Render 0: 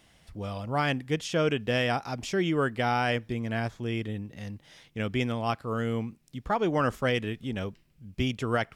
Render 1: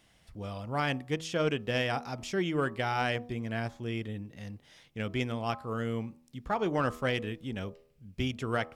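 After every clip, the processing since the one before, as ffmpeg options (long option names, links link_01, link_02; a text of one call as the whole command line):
ffmpeg -i in.wav -af "bandreject=frequency=80.66:width_type=h:width=4,bandreject=frequency=161.32:width_type=h:width=4,bandreject=frequency=241.98:width_type=h:width=4,bandreject=frequency=322.64:width_type=h:width=4,bandreject=frequency=403.3:width_type=h:width=4,bandreject=frequency=483.96:width_type=h:width=4,bandreject=frequency=564.62:width_type=h:width=4,bandreject=frequency=645.28:width_type=h:width=4,bandreject=frequency=725.94:width_type=h:width=4,bandreject=frequency=806.6:width_type=h:width=4,bandreject=frequency=887.26:width_type=h:width=4,bandreject=frequency=967.92:width_type=h:width=4,bandreject=frequency=1048.58:width_type=h:width=4,bandreject=frequency=1129.24:width_type=h:width=4,bandreject=frequency=1209.9:width_type=h:width=4,bandreject=frequency=1290.56:width_type=h:width=4,aeval=exprs='0.2*(cos(1*acos(clip(val(0)/0.2,-1,1)))-cos(1*PI/2))+0.0158*(cos(3*acos(clip(val(0)/0.2,-1,1)))-cos(3*PI/2))':channel_layout=same,volume=-1.5dB" out.wav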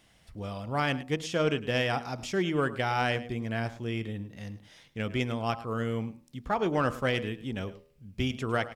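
ffmpeg -i in.wav -af "aecho=1:1:106:0.15,volume=2dB" out.wav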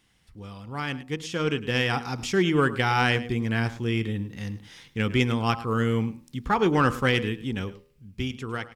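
ffmpeg -i in.wav -af "dynaudnorm=framelen=360:gausssize=9:maxgain=11.5dB,equalizer=frequency=630:width_type=o:width=0.32:gain=-14,volume=-3dB" out.wav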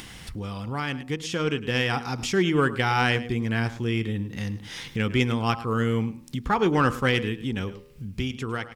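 ffmpeg -i in.wav -af "acompressor=mode=upward:threshold=-24dB:ratio=2.5" out.wav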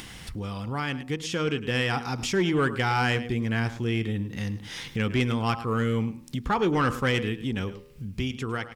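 ffmpeg -i in.wav -af "asoftclip=type=tanh:threshold=-16dB" out.wav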